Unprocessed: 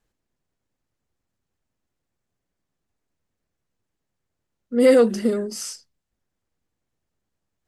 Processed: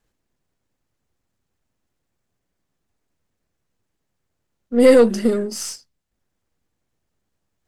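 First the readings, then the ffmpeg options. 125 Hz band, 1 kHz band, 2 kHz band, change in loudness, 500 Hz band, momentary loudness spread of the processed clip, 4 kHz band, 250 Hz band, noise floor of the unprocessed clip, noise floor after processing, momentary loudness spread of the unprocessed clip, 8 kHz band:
can't be measured, +3.5 dB, +3.0 dB, +3.0 dB, +3.0 dB, 16 LU, +3.0 dB, +3.5 dB, −81 dBFS, −77 dBFS, 16 LU, +3.0 dB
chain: -af "aeval=exprs='if(lt(val(0),0),0.708*val(0),val(0))':channel_layout=same,volume=4.5dB"

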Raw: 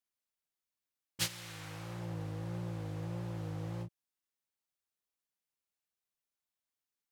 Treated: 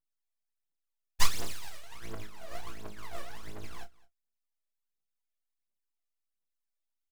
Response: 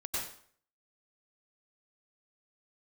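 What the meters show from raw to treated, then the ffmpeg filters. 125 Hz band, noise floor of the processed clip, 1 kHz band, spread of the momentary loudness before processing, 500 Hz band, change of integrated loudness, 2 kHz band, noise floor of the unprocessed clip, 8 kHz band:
−9.5 dB, −84 dBFS, +7.0 dB, 9 LU, −1.0 dB, +1.0 dB, +5.0 dB, below −85 dBFS, +4.5 dB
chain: -filter_complex "[0:a]highpass=frequency=730:poles=1,agate=range=-19dB:threshold=-48dB:ratio=16:detection=peak,acrossover=split=3600[link_01][link_02];[link_02]acompressor=threshold=-55dB:ratio=4:attack=1:release=60[link_03];[link_01][link_03]amix=inputs=2:normalize=0,aeval=exprs='abs(val(0))':channel_layout=same,aphaser=in_gain=1:out_gain=1:delay=1.8:decay=0.79:speed=1.4:type=triangular,acrusher=bits=8:mode=log:mix=0:aa=0.000001,asplit=2[link_04][link_05];[link_05]adelay=29,volume=-10dB[link_06];[link_04][link_06]amix=inputs=2:normalize=0,aecho=1:1:212:0.075,volume=12dB"

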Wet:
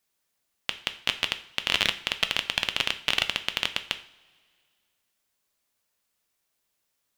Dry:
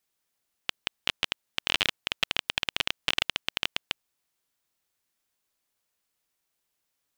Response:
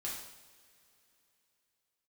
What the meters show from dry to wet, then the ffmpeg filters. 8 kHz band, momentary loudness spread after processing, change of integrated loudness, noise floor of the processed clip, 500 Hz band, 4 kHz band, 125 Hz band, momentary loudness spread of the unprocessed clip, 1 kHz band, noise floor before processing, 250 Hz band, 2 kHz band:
+2.5 dB, 9 LU, +2.5 dB, −78 dBFS, +2.5 dB, +2.5 dB, +2.5 dB, 9 LU, +2.5 dB, −80 dBFS, +2.5 dB, +2.5 dB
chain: -filter_complex "[0:a]asplit=2[link_01][link_02];[1:a]atrim=start_sample=2205,asetrate=70560,aresample=44100[link_03];[link_02][link_03]afir=irnorm=-1:irlink=0,volume=-2dB[link_04];[link_01][link_04]amix=inputs=2:normalize=0"

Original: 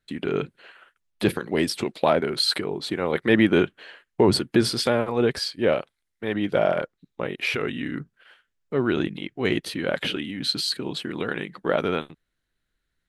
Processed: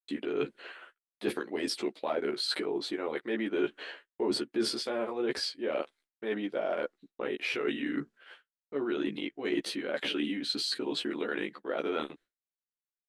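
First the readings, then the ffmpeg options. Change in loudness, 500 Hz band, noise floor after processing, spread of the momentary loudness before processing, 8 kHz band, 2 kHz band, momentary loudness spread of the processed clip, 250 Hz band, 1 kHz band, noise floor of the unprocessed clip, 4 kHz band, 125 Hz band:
−9.0 dB, −8.5 dB, below −85 dBFS, 10 LU, −8.0 dB, −8.5 dB, 8 LU, −8.5 dB, −10.0 dB, −79 dBFS, −7.5 dB, −20.0 dB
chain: -filter_complex "[0:a]lowpass=9500,lowshelf=frequency=200:width_type=q:width=1.5:gain=-12.5,agate=range=-33dB:threshold=-50dB:ratio=3:detection=peak,areverse,acompressor=threshold=-31dB:ratio=6,areverse,asplit=2[link_01][link_02];[link_02]adelay=14,volume=-3dB[link_03];[link_01][link_03]amix=inputs=2:normalize=0"

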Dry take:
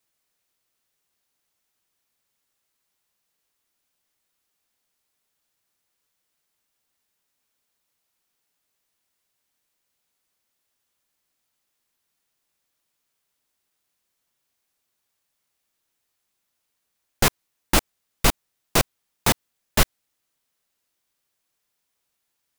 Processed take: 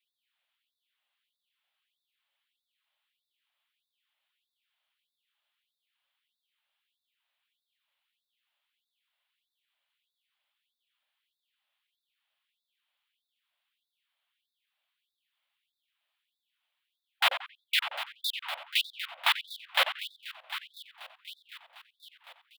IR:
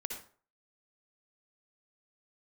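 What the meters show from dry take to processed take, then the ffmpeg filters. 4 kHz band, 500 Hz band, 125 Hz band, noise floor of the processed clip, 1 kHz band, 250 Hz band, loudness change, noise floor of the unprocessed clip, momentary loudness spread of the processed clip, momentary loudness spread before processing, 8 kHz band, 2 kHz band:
0.0 dB, −14.5 dB, below −40 dB, below −85 dBFS, −6.0 dB, below −40 dB, −6.5 dB, −78 dBFS, 20 LU, 4 LU, −18.5 dB, −1.5 dB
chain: -filter_complex "[0:a]highshelf=frequency=4500:width_type=q:width=3:gain=-11.5,asplit=2[link_01][link_02];[link_02]adelay=90,lowpass=frequency=2400:poles=1,volume=-9dB,asplit=2[link_03][link_04];[link_04]adelay=90,lowpass=frequency=2400:poles=1,volume=0.49,asplit=2[link_05][link_06];[link_06]adelay=90,lowpass=frequency=2400:poles=1,volume=0.49,asplit=2[link_07][link_08];[link_08]adelay=90,lowpass=frequency=2400:poles=1,volume=0.49,asplit=2[link_09][link_10];[link_10]adelay=90,lowpass=frequency=2400:poles=1,volume=0.49,asplit=2[link_11][link_12];[link_12]adelay=90,lowpass=frequency=2400:poles=1,volume=0.49[link_13];[link_03][link_05][link_07][link_09][link_11][link_13]amix=inputs=6:normalize=0[link_14];[link_01][link_14]amix=inputs=2:normalize=0,afftfilt=real='re*lt(hypot(re,im),0.447)':imag='im*lt(hypot(re,im),0.447)':win_size=1024:overlap=0.75,asplit=2[link_15][link_16];[link_16]aecho=0:1:751|1502|2253|3004|3755|4506:0.251|0.136|0.0732|0.0396|0.0214|0.0115[link_17];[link_15][link_17]amix=inputs=2:normalize=0,afftfilt=real='re*gte(b*sr/1024,510*pow(3500/510,0.5+0.5*sin(2*PI*1.6*pts/sr)))':imag='im*gte(b*sr/1024,510*pow(3500/510,0.5+0.5*sin(2*PI*1.6*pts/sr)))':win_size=1024:overlap=0.75,volume=-3dB"

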